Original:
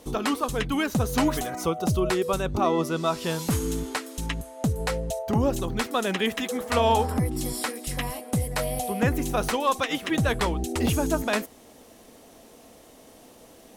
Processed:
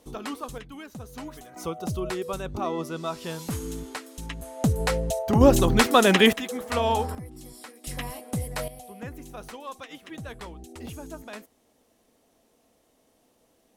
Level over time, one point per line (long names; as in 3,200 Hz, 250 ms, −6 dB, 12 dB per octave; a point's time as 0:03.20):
−8.5 dB
from 0:00.58 −16 dB
from 0:01.56 −6 dB
from 0:04.42 +2.5 dB
from 0:05.41 +8.5 dB
from 0:06.33 −3 dB
from 0:07.15 −15 dB
from 0:07.84 −4 dB
from 0:08.68 −15 dB